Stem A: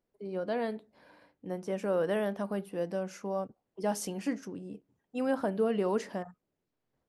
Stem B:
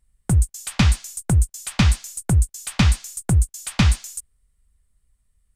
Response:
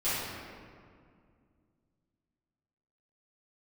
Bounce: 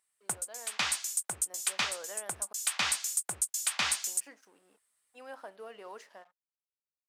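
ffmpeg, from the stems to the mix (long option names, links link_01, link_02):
-filter_complex "[0:a]aeval=exprs='sgn(val(0))*max(abs(val(0))-0.00168,0)':channel_layout=same,volume=-11.5dB,asplit=3[link_01][link_02][link_03];[link_01]atrim=end=2.53,asetpts=PTS-STARTPTS,afade=type=out:start_time=2.526:duration=0.004:curve=hsin[link_04];[link_02]atrim=start=2.53:end=4.05,asetpts=PTS-STARTPTS,volume=0[link_05];[link_03]atrim=start=4.05,asetpts=PTS-STARTPTS,afade=type=in:duration=0.004:curve=hsin[link_06];[link_04][link_05][link_06]concat=n=3:v=0:a=1,asplit=2[link_07][link_08];[1:a]volume=-1dB[link_09];[link_08]apad=whole_len=245140[link_10];[link_09][link_10]sidechaincompress=threshold=-46dB:ratio=8:attack=29:release=321[link_11];[link_07][link_11]amix=inputs=2:normalize=0,highpass=770,dynaudnorm=framelen=470:gausssize=5:maxgain=3.5dB,alimiter=limit=-16dB:level=0:latency=1:release=152"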